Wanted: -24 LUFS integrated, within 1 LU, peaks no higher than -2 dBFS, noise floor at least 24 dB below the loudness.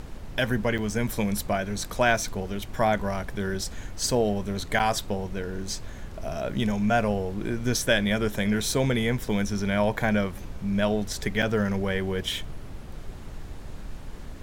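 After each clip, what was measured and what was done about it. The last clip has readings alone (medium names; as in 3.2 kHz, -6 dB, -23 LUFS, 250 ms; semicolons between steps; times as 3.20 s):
dropouts 3; longest dropout 7.2 ms; noise floor -39 dBFS; noise floor target -51 dBFS; loudness -27.0 LUFS; peak level -8.5 dBFS; loudness target -24.0 LUFS
-> interpolate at 0.78/4.79/11.42 s, 7.2 ms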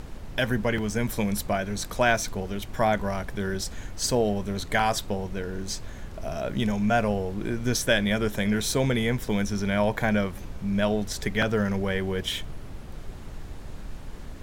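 dropouts 0; noise floor -39 dBFS; noise floor target -51 dBFS
-> noise print and reduce 12 dB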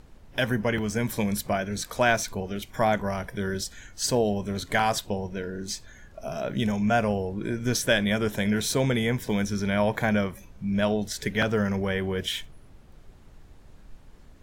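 noise floor -51 dBFS; loudness -27.0 LUFS; peak level -8.0 dBFS; loudness target -24.0 LUFS
-> trim +3 dB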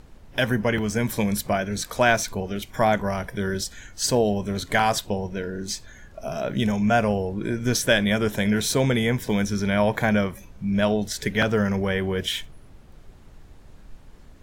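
loudness -24.0 LUFS; peak level -5.0 dBFS; noise floor -48 dBFS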